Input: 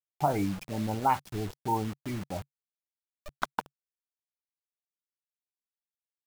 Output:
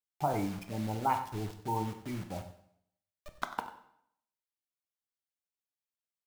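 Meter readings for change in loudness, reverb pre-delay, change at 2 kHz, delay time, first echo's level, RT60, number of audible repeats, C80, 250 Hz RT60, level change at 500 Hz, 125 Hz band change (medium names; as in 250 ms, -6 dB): -3.5 dB, 10 ms, -4.0 dB, 94 ms, -14.5 dB, 0.70 s, 1, 11.5 dB, 0.70 s, -4.0 dB, -3.0 dB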